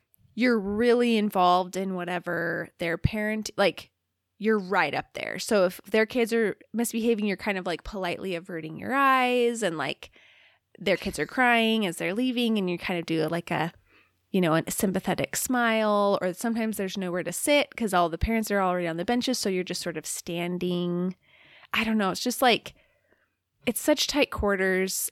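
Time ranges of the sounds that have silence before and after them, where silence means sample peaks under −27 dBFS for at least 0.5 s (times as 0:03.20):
0:04.43–0:10.03
0:10.86–0:13.68
0:14.34–0:21.10
0:21.74–0:22.67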